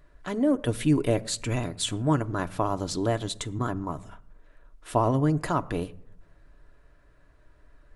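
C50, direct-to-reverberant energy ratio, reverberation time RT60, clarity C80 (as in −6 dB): 21.5 dB, 7.5 dB, non-exponential decay, 23.0 dB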